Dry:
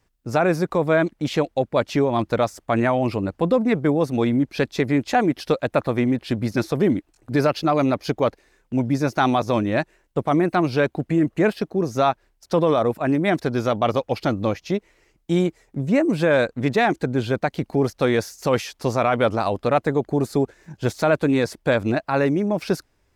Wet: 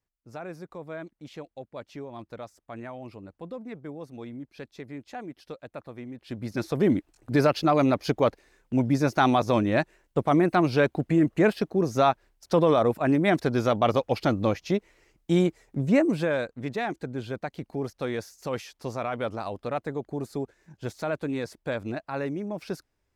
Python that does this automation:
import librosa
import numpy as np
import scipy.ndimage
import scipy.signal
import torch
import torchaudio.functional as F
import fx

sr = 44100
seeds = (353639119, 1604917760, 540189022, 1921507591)

y = fx.gain(x, sr, db=fx.line((6.14, -19.5), (6.33, -12.0), (6.92, -2.0), (15.99, -2.0), (16.45, -11.0)))